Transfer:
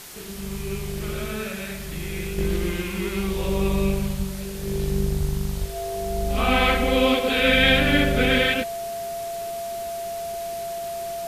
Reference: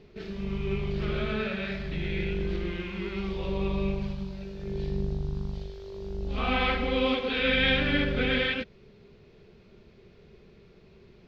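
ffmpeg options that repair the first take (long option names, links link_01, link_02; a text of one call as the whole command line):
ffmpeg -i in.wav -filter_complex "[0:a]bandreject=frequency=680:width=30,asplit=3[link_01][link_02][link_03];[link_01]afade=type=out:start_time=4.16:duration=0.02[link_04];[link_02]highpass=frequency=140:width=0.5412,highpass=frequency=140:width=1.3066,afade=type=in:start_time=4.16:duration=0.02,afade=type=out:start_time=4.28:duration=0.02[link_05];[link_03]afade=type=in:start_time=4.28:duration=0.02[link_06];[link_04][link_05][link_06]amix=inputs=3:normalize=0,asplit=3[link_07][link_08][link_09];[link_07]afade=type=out:start_time=5.18:duration=0.02[link_10];[link_08]highpass=frequency=140:width=0.5412,highpass=frequency=140:width=1.3066,afade=type=in:start_time=5.18:duration=0.02,afade=type=out:start_time=5.3:duration=0.02[link_11];[link_09]afade=type=in:start_time=5.3:duration=0.02[link_12];[link_10][link_11][link_12]amix=inputs=3:normalize=0,asplit=3[link_13][link_14][link_15];[link_13]afade=type=out:start_time=5.6:duration=0.02[link_16];[link_14]highpass=frequency=140:width=0.5412,highpass=frequency=140:width=1.3066,afade=type=in:start_time=5.6:duration=0.02,afade=type=out:start_time=5.72:duration=0.02[link_17];[link_15]afade=type=in:start_time=5.72:duration=0.02[link_18];[link_16][link_17][link_18]amix=inputs=3:normalize=0,afwtdn=0.01,asetnsamples=nb_out_samples=441:pad=0,asendcmd='2.38 volume volume -6.5dB',volume=0dB" out.wav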